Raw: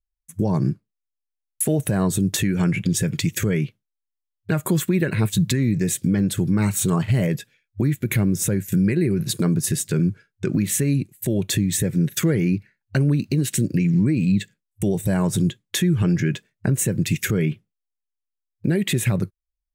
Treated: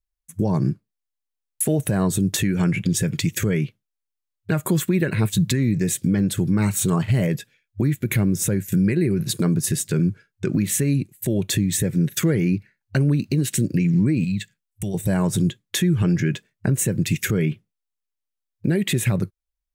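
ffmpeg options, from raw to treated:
-filter_complex "[0:a]asettb=1/sr,asplit=3[s0][s1][s2];[s0]atrim=end=14.244[s3];[s1]atrim=start=14.24:end=14.94,asetpts=PTS-STARTPTS,afade=t=in:d=0.004:c=qsin,afade=t=out:st=0.696:d=0.004:c=qsin,equalizer=f=360:w=0.68:g=-11[s4];[s2]atrim=start=14.936[s5];[s3][s4]acrossfade=d=0.004:c1=hsin:c2=qsin[s6];[s6][s5]acrossfade=d=0.004:c1=qsin:c2=hsin"

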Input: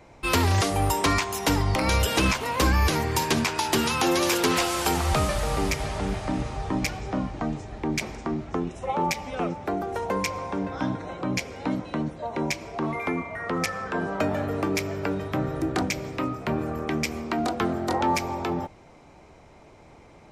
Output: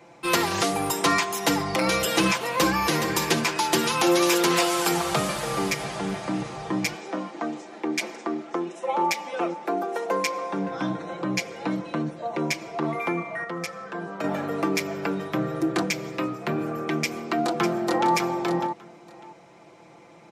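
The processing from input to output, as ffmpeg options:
-filter_complex "[0:a]asplit=2[s0][s1];[s1]afade=t=in:st=2.39:d=0.01,afade=t=out:st=2.92:d=0.01,aecho=0:1:420|840|1260:0.398107|0.0995268|0.0248817[s2];[s0][s2]amix=inputs=2:normalize=0,asettb=1/sr,asplit=3[s3][s4][s5];[s3]atrim=end=6.954[s6];[s4]atrim=start=6.95:end=10.53,asetpts=PTS-STARTPTS,afade=t=in:d=0.004:c=qsin,afade=t=out:st=3.576:d=0.004:c=qsin,highpass=f=240:w=0.5412,highpass=f=240:w=1.3066[s7];[s5]atrim=start=10.526[s8];[s6][s7]acrossfade=d=0.004:c1=hsin:c2=qsin[s9];[s9][s8]acrossfade=d=0.004:c1=qsin:c2=hsin,asplit=2[s10][s11];[s11]afade=t=in:st=16.95:d=0.01,afade=t=out:st=18.12:d=0.01,aecho=0:1:600|1200:0.398107|0.0597161[s12];[s10][s12]amix=inputs=2:normalize=0,asplit=3[s13][s14][s15];[s13]atrim=end=13.442[s16];[s14]atrim=start=13.438:end=14.242,asetpts=PTS-STARTPTS,volume=0.473[s17];[s15]atrim=start=14.238[s18];[s16][s17]acrossfade=d=0.004:c1=hsin:c2=hsin[s19];[s19][s18]acrossfade=d=0.004:c1=hsin:c2=hsin,highpass=170,aecho=1:1:5.9:0.69"

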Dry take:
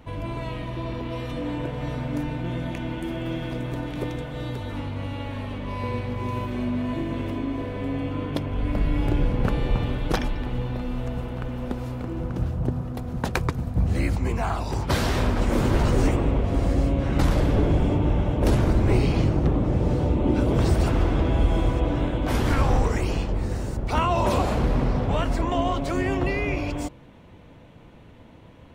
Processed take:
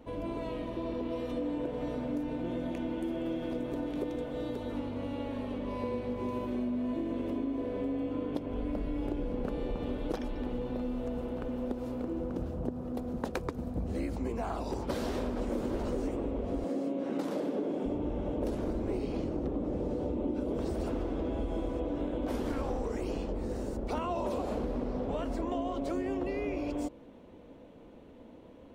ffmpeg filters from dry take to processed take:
-filter_complex "[0:a]asettb=1/sr,asplit=3[s0][s1][s2];[s0]atrim=end=16.644[s3];[s1]atrim=start=16.64:end=17.86,asetpts=PTS-STARTPTS,afade=t=in:d=0.004:c=qsin,afade=t=out:st=1.216:d=0.004:c=qsin,highpass=f=180:w=0.5412,highpass=f=180:w=1.3066[s4];[s2]atrim=start=17.856[s5];[s3][s4]acrossfade=d=0.004:c1=hsin:c2=qsin[s6];[s6][s5]acrossfade=d=0.004:c1=qsin:c2=hsin,equalizer=f=125:t=o:w=1:g=-9,equalizer=f=250:t=o:w=1:g=8,equalizer=f=500:t=o:w=1:g=8,equalizer=f=2000:t=o:w=1:g=-3,acompressor=threshold=0.0794:ratio=6,volume=0.398"

